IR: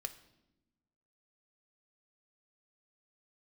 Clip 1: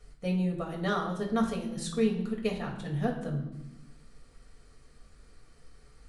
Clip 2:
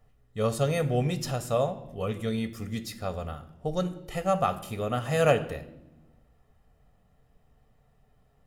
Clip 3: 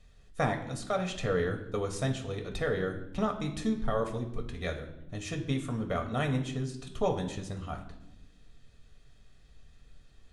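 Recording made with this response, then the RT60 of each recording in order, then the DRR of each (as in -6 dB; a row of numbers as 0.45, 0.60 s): 2; 0.90, 0.95, 0.90 s; -1.5, 8.0, 3.0 dB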